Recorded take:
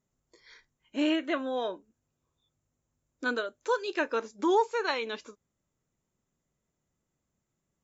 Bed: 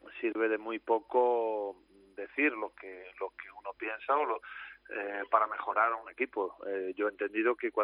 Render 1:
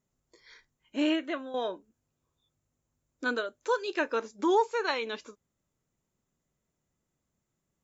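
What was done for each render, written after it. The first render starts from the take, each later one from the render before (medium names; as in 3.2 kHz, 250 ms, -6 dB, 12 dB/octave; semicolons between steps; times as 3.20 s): 1.11–1.54 s: fade out, to -10 dB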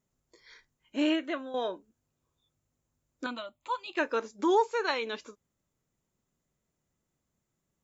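3.26–3.97 s: static phaser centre 1.6 kHz, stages 6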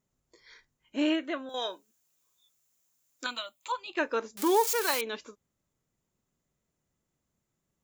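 1.49–3.72 s: tilt EQ +4.5 dB/octave; 4.37–5.01 s: zero-crossing glitches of -22.5 dBFS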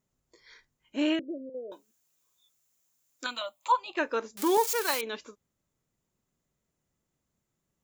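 1.19–1.72 s: steep low-pass 570 Hz 72 dB/octave; 3.41–3.97 s: high-order bell 790 Hz +9 dB 1.3 oct; 4.57–5.03 s: expander -29 dBFS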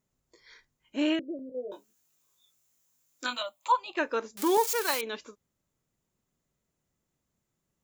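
1.37–3.43 s: doubling 20 ms -3 dB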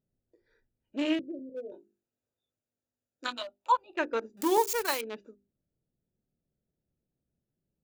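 local Wiener filter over 41 samples; hum notches 50/100/150/200/250/300/350/400 Hz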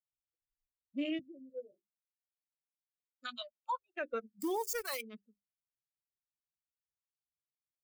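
expander on every frequency bin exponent 2; peak limiter -28 dBFS, peak gain reduction 12 dB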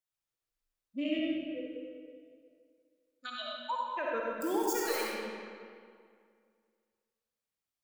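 algorithmic reverb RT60 2.2 s, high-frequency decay 0.7×, pre-delay 20 ms, DRR -4 dB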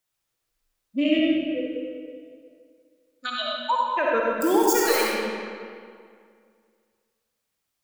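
trim +11.5 dB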